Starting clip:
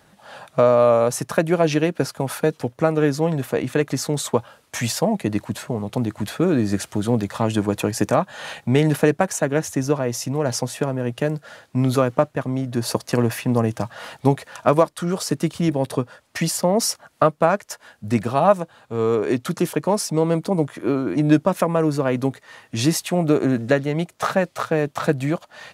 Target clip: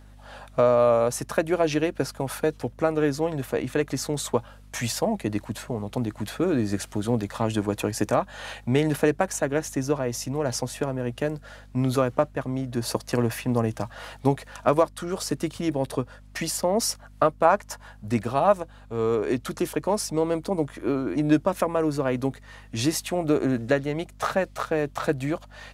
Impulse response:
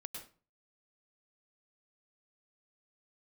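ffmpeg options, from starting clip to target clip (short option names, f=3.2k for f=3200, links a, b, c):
-filter_complex "[0:a]asettb=1/sr,asplit=3[a][b][c];[a]atrim=end=17.454[d];[b]atrim=start=17.45:end=18.08,asetpts=PTS-STARTPTS,afade=t=in:d=0.004:c=qsin,afade=t=out:st=0.626:d=0.004:c=qsin,equalizer=f=940:t=o:w=0.9:g=7.5[e];[c]atrim=start=18.076[f];[d][e]acrossfade=d=0.004:c1=hsin:c2=qsin[g];[g][f]acrossfade=d=0.004:c1=qsin:c2=hsin,aeval=exprs='val(0)+0.00708*(sin(2*PI*50*n/s)+sin(2*PI*2*50*n/s)/2+sin(2*PI*3*50*n/s)/3+sin(2*PI*4*50*n/s)/4+sin(2*PI*5*50*n/s)/5)':c=same,equalizer=f=170:t=o:w=0.24:g=-10.5,volume=-4dB"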